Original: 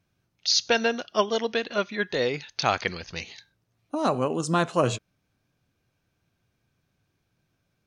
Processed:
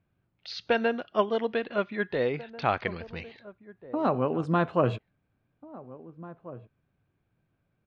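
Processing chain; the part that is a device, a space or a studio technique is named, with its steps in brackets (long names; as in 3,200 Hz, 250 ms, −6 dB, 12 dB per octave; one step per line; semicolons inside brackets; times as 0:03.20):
shout across a valley (high-frequency loss of the air 450 metres; slap from a distant wall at 290 metres, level −17 dB)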